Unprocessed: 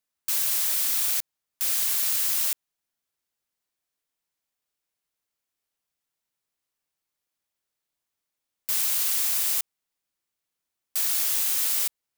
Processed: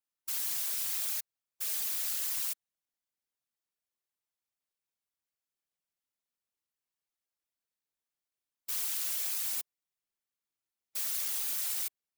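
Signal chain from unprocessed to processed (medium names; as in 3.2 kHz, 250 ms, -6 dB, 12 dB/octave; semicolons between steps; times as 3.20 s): whisper effect; spectral gate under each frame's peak -30 dB strong; 8.72–9.56 s: high-pass 130 Hz; trim -9 dB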